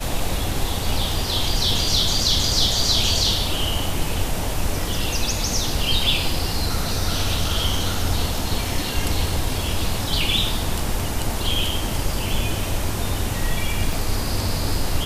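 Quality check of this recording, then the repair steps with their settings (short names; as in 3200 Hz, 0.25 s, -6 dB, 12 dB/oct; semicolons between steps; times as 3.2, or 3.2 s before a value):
13.93 gap 2.5 ms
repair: interpolate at 13.93, 2.5 ms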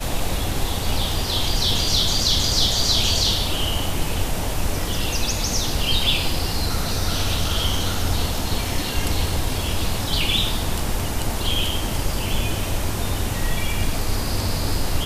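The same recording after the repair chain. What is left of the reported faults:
none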